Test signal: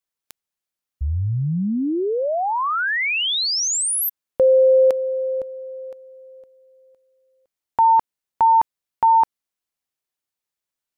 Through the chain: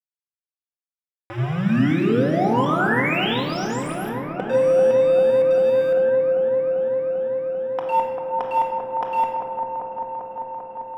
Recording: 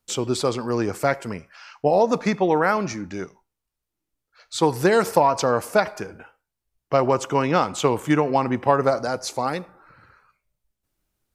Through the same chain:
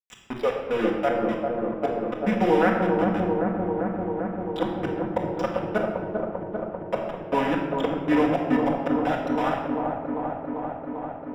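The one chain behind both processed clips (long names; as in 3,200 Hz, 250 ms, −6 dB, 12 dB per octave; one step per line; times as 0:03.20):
adaptive Wiener filter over 25 samples
high-pass filter 170 Hz 24 dB per octave
notch filter 1,100 Hz, Q 17
noise reduction from a noise print of the clip's start 29 dB
dynamic equaliser 830 Hz, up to −3 dB, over −34 dBFS, Q 6.7
downward compressor 1.5 to 1, threshold −42 dBFS
gate with flip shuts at −19 dBFS, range −26 dB
bit-depth reduction 6 bits, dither none
Savitzky-Golay smoothing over 25 samples
delay with a low-pass on its return 394 ms, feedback 80%, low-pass 1,000 Hz, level −3.5 dB
rectangular room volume 1,300 cubic metres, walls mixed, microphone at 1.9 metres
level +6 dB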